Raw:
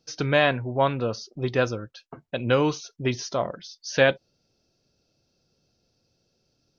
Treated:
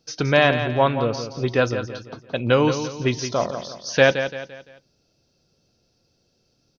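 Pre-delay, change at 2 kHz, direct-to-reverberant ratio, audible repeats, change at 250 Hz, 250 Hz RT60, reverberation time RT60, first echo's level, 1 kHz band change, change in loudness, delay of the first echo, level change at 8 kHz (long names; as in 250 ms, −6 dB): no reverb audible, +4.0 dB, no reverb audible, 4, +4.0 dB, no reverb audible, no reverb audible, −9.5 dB, +4.0 dB, +3.5 dB, 171 ms, can't be measured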